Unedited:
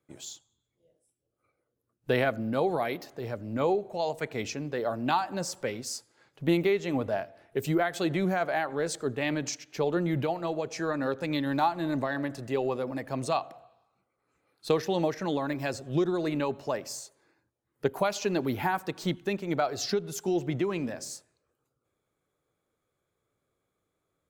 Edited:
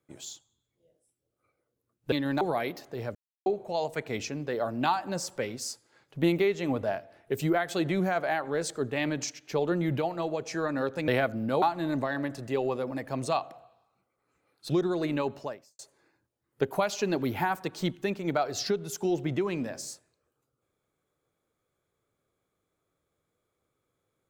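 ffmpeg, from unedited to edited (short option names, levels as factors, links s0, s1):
-filter_complex "[0:a]asplit=9[s0][s1][s2][s3][s4][s5][s6][s7][s8];[s0]atrim=end=2.122[s9];[s1]atrim=start=11.328:end=11.622[s10];[s2]atrim=start=2.658:end=3.4,asetpts=PTS-STARTPTS,afade=t=out:st=0.738:d=0.004:c=hsin[s11];[s3]atrim=start=3.4:end=3.71,asetpts=PTS-STARTPTS,volume=0[s12];[s4]atrim=start=3.71:end=11.332,asetpts=PTS-STARTPTS,afade=t=in:d=0.004:c=hsin[s13];[s5]atrim=start=2.118:end=2.662[s14];[s6]atrim=start=11.618:end=14.702[s15];[s7]atrim=start=15.928:end=17.02,asetpts=PTS-STARTPTS,afade=t=out:st=0.672:d=0.42:c=qua[s16];[s8]atrim=start=17.02,asetpts=PTS-STARTPTS,afade=t=in:d=0.004:c=hsin[s17];[s9][s10]acrossfade=d=0.004:c1=hsin:c2=hsin[s18];[s11][s12][s13]concat=n=3:v=0:a=1[s19];[s18][s19]acrossfade=d=0.004:c1=hsin:c2=hsin[s20];[s20][s14]acrossfade=d=0.004:c1=hsin:c2=hsin[s21];[s21][s15]acrossfade=d=0.004:c1=hsin:c2=hsin[s22];[s16][s17]concat=n=2:v=0:a=1[s23];[s22][s23]acrossfade=d=0.004:c1=hsin:c2=hsin"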